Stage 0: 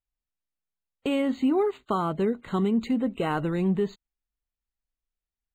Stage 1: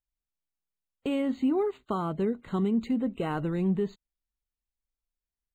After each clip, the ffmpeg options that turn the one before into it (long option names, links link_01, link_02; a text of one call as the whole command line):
ffmpeg -i in.wav -af "lowshelf=frequency=440:gain=5,volume=-6dB" out.wav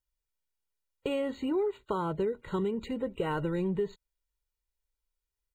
ffmpeg -i in.wav -af "aecho=1:1:2.1:0.66,acompressor=threshold=-26dB:ratio=6" out.wav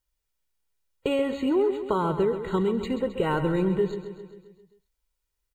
ffmpeg -i in.wav -af "aecho=1:1:133|266|399|532|665|798|931:0.299|0.176|0.104|0.0613|0.0362|0.0213|0.0126,volume=6dB" out.wav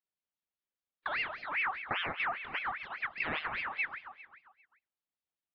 ffmpeg -i in.wav -af "highpass=frequency=360:width_type=q:width=0.5412,highpass=frequency=360:width_type=q:width=1.307,lowpass=frequency=2600:width_type=q:width=0.5176,lowpass=frequency=2600:width_type=q:width=0.7071,lowpass=frequency=2600:width_type=q:width=1.932,afreqshift=-210,aeval=exprs='val(0)*sin(2*PI*1700*n/s+1700*0.45/5*sin(2*PI*5*n/s))':channel_layout=same,volume=-5.5dB" out.wav